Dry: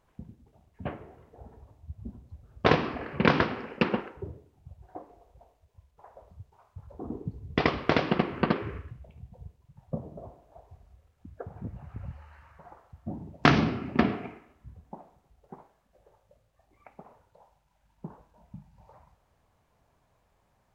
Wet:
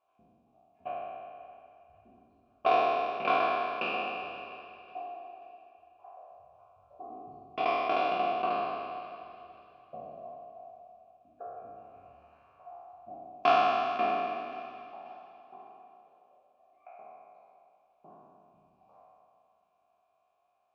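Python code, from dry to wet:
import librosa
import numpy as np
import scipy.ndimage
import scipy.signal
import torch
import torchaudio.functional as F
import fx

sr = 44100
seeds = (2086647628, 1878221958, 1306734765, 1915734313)

p1 = fx.spec_trails(x, sr, decay_s=2.27)
p2 = fx.vowel_filter(p1, sr, vowel='a')
p3 = fx.high_shelf(p2, sr, hz=3500.0, db=10.5)
p4 = p3 + 0.3 * np.pad(p3, (int(2.9 * sr / 1000.0), 0))[:len(p3)]
p5 = p4 + fx.echo_feedback(p4, sr, ms=535, feedback_pct=41, wet_db=-21, dry=0)
y = fx.rev_spring(p5, sr, rt60_s=3.8, pass_ms=(41,), chirp_ms=70, drr_db=17.0)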